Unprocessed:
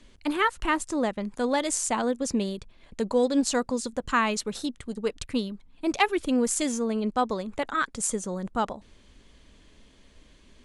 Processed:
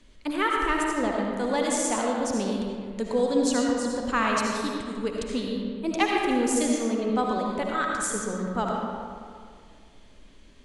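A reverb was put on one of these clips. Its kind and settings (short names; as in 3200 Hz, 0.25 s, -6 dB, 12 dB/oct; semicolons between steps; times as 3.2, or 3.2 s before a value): digital reverb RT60 2.1 s, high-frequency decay 0.55×, pre-delay 35 ms, DRR -1.5 dB; gain -2.5 dB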